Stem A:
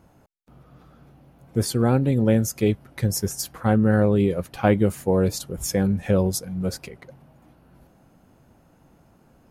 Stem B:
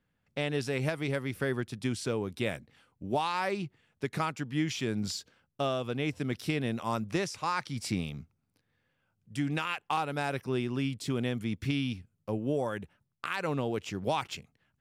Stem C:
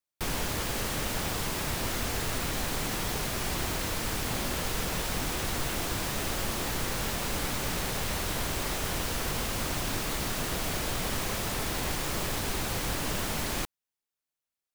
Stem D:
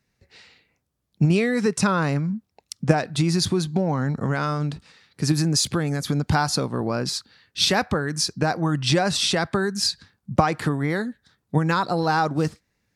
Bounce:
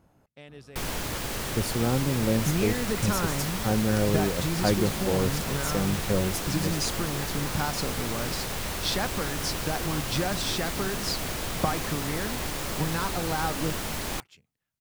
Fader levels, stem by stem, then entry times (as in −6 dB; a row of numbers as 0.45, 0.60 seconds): −6.5, −15.5, −0.5, −9.0 decibels; 0.00, 0.00, 0.55, 1.25 seconds